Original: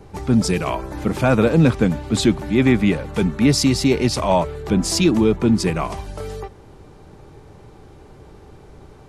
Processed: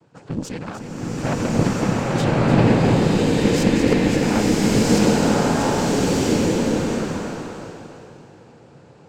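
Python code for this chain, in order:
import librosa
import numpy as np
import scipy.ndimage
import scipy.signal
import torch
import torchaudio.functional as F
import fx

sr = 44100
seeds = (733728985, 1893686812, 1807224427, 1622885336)

p1 = fx.noise_vocoder(x, sr, seeds[0], bands=8)
p2 = fx.cheby_harmonics(p1, sr, harmonics=(3, 5, 6), levels_db=(-13, -35, -26), full_scale_db=-0.5)
p3 = p2 + fx.echo_single(p2, sr, ms=301, db=-9.5, dry=0)
p4 = fx.rev_bloom(p3, sr, seeds[1], attack_ms=1310, drr_db=-8.5)
y = p4 * librosa.db_to_amplitude(-3.5)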